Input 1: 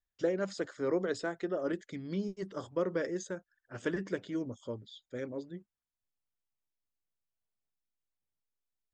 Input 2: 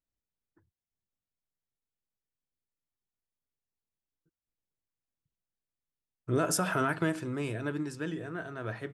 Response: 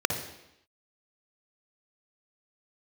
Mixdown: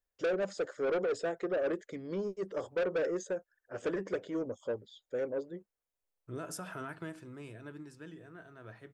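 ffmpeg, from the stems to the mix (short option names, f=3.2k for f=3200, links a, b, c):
-filter_complex "[0:a]equalizer=f=125:t=o:w=1:g=-5,equalizer=f=250:t=o:w=1:g=-4,equalizer=f=500:t=o:w=1:g=11,equalizer=f=4k:t=o:w=1:g=-5,asoftclip=type=tanh:threshold=-27.5dB,volume=0dB[a];[1:a]volume=-13dB[b];[a][b]amix=inputs=2:normalize=0"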